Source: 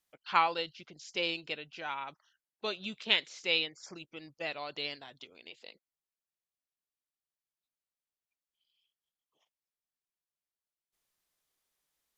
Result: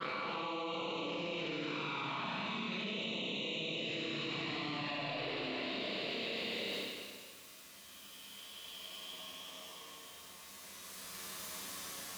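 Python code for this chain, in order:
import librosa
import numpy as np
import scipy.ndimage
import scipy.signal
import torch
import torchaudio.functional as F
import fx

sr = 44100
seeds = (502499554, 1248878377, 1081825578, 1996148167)

y = fx.spec_blur(x, sr, span_ms=1130.0)
y = scipy.signal.sosfilt(scipy.signal.butter(2, 49.0, 'highpass', fs=sr, output='sos'), y)
y = fx.hum_notches(y, sr, base_hz=50, count=3)
y = fx.dynamic_eq(y, sr, hz=4200.0, q=0.73, threshold_db=-59.0, ratio=4.0, max_db=-5)
y = fx.notch(y, sr, hz=800.0, q=12.0)
y = fx.small_body(y, sr, hz=(200.0, 1100.0, 3800.0), ring_ms=35, db=6)
y = fx.env_flanger(y, sr, rest_ms=11.2, full_db=-41.5)
y = fx.granulator(y, sr, seeds[0], grain_ms=100.0, per_s=20.0, spray_ms=100.0, spread_st=0)
y = fx.rev_schroeder(y, sr, rt60_s=1.6, comb_ms=27, drr_db=-6.5)
y = fx.env_flatten(y, sr, amount_pct=100)
y = y * 10.0 ** (-1.0 / 20.0)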